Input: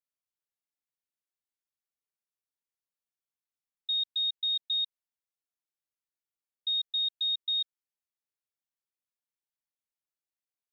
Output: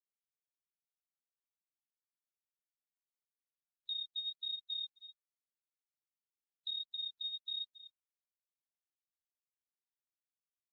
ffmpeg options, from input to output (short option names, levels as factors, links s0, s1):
-filter_complex "[0:a]asettb=1/sr,asplit=3[s0][s1][s2];[s0]atrim=end=3.904[s3];[s1]atrim=start=3.9:end=6.68,asetpts=PTS-STARTPTS,afade=t=in:d=0.004:c=qsin,afade=t=out:st=2.776:d=0.004:c=qsin,aeval=exprs='val(0)+0.5*0.00668*sgn(val(0))':c=same[s4];[s2]atrim=start=6.676[s5];[s3][s4]acrossfade=d=0.004:c1=hsin:c2=qsin[s6];[s6][s5]acrossfade=d=0.004:c1=qsin:c2=hsin,agate=range=0.02:threshold=0.00708:ratio=16:detection=peak,asplit=2[s7][s8];[s8]adelay=257,lowpass=f=3600:p=1,volume=0.0794,asplit=2[s9][s10];[s10]adelay=257,lowpass=f=3600:p=1,volume=0.42,asplit=2[s11][s12];[s12]adelay=257,lowpass=f=3600:p=1,volume=0.42[s13];[s7][s9][s11][s13]amix=inputs=4:normalize=0,acompressor=threshold=0.00891:ratio=4,flanger=delay=17.5:depth=2.5:speed=1.3,afftfilt=real='re*gte(hypot(re,im),0.0112)':imag='im*gte(hypot(re,im),0.0112)':win_size=1024:overlap=0.75,bandreject=f=3500:w=9.8,volume=1.78" -ar 48000 -c:a libopus -b:a 32k